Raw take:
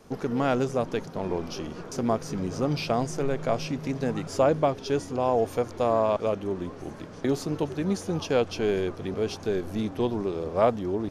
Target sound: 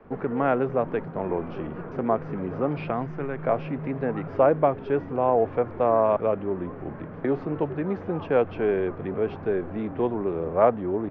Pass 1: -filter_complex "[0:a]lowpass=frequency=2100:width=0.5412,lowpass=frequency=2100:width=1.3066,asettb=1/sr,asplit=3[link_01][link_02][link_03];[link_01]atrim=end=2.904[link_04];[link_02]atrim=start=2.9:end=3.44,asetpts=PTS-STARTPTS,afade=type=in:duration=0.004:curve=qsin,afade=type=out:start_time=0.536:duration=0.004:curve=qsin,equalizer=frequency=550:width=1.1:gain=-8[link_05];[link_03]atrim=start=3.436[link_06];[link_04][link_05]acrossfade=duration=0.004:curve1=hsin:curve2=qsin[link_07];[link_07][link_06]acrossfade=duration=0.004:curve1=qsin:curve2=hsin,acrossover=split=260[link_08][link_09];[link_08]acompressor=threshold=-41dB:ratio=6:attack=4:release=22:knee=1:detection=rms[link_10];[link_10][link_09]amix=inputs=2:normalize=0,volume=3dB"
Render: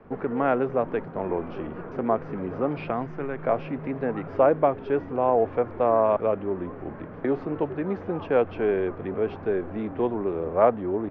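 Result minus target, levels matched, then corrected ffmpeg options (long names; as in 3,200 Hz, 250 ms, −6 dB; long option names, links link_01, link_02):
125 Hz band −3.0 dB
-filter_complex "[0:a]lowpass=frequency=2100:width=0.5412,lowpass=frequency=2100:width=1.3066,asettb=1/sr,asplit=3[link_01][link_02][link_03];[link_01]atrim=end=2.904[link_04];[link_02]atrim=start=2.9:end=3.44,asetpts=PTS-STARTPTS,afade=type=in:duration=0.004:curve=qsin,afade=type=out:start_time=0.536:duration=0.004:curve=qsin,equalizer=frequency=550:width=1.1:gain=-8[link_05];[link_03]atrim=start=3.436[link_06];[link_04][link_05]acrossfade=duration=0.004:curve1=hsin:curve2=qsin[link_07];[link_07][link_06]acrossfade=duration=0.004:curve1=qsin:curve2=hsin,acrossover=split=260[link_08][link_09];[link_08]acompressor=threshold=-41dB:ratio=6:attack=4:release=22:knee=1:detection=rms,adynamicequalizer=threshold=0.00158:dfrequency=150:dqfactor=1.9:tfrequency=150:tqfactor=1.9:attack=5:release=100:ratio=0.375:range=2.5:mode=boostabove:tftype=bell[link_10];[link_10][link_09]amix=inputs=2:normalize=0,volume=3dB"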